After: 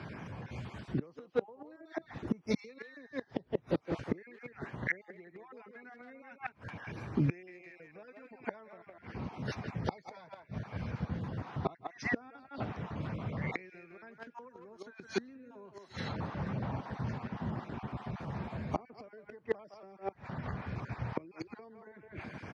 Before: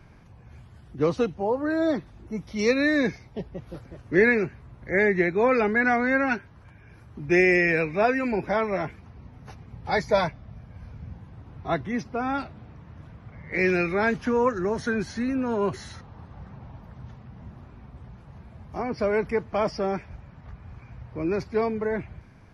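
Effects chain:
time-frequency cells dropped at random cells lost 26%
far-end echo of a speakerphone 160 ms, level −6 dB
downward compressor 16 to 1, threshold −30 dBFS, peak gain reduction 16 dB
gate with flip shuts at −28 dBFS, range −29 dB
band-pass filter 140–6,100 Hz
level +10.5 dB

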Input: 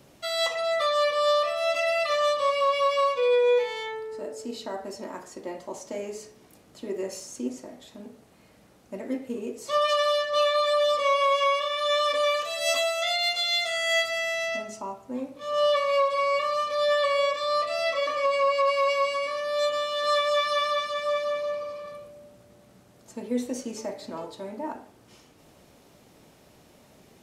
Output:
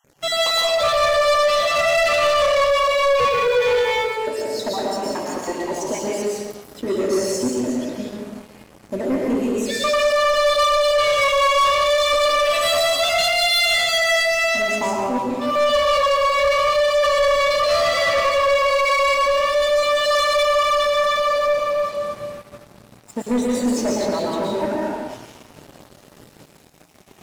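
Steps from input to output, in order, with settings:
time-frequency cells dropped at random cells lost 38%
in parallel at −5 dB: gain into a clipping stage and back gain 31.5 dB
on the sum: convolution reverb RT60 1.4 s, pre-delay 108 ms, DRR −3.5 dB
leveller curve on the samples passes 3
level −4 dB

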